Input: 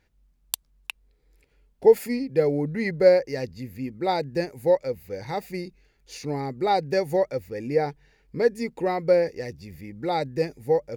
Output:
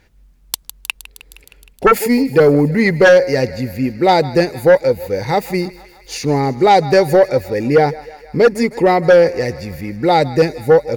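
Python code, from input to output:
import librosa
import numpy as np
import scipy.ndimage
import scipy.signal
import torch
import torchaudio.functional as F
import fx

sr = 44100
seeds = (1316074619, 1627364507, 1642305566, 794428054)

y = fx.echo_thinned(x, sr, ms=156, feedback_pct=73, hz=520.0, wet_db=-18)
y = fx.fold_sine(y, sr, drive_db=10, ceiling_db=-4.0)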